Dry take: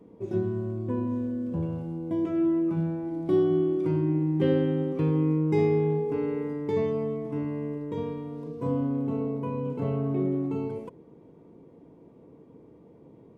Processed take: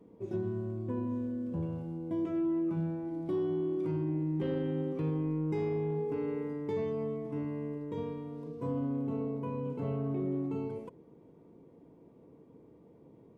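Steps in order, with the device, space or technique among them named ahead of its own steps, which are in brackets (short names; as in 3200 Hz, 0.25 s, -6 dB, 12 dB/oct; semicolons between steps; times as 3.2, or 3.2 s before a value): soft clipper into limiter (soft clip -14.5 dBFS, distortion -25 dB; limiter -21 dBFS, peak gain reduction 5.5 dB); gain -5 dB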